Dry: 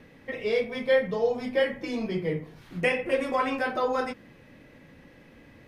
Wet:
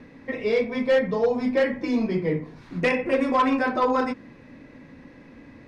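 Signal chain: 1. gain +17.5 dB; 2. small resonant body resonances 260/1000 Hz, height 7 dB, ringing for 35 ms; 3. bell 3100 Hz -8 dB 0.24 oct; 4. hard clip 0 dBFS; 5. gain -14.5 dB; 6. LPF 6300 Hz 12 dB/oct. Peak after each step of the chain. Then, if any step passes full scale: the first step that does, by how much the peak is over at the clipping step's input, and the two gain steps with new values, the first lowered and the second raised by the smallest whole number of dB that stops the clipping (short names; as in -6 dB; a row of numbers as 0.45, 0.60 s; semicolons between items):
+6.5, +7.5, +7.5, 0.0, -14.5, -14.0 dBFS; step 1, 7.5 dB; step 1 +9.5 dB, step 5 -6.5 dB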